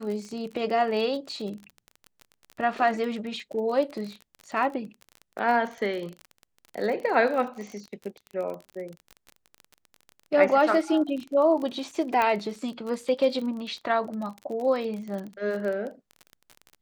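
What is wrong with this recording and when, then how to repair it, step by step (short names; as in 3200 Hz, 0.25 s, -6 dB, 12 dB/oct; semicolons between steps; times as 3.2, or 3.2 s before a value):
crackle 35/s -33 dBFS
12.22 pop -13 dBFS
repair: de-click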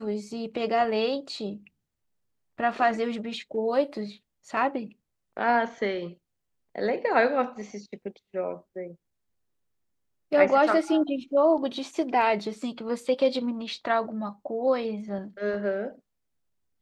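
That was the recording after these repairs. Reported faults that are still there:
12.22 pop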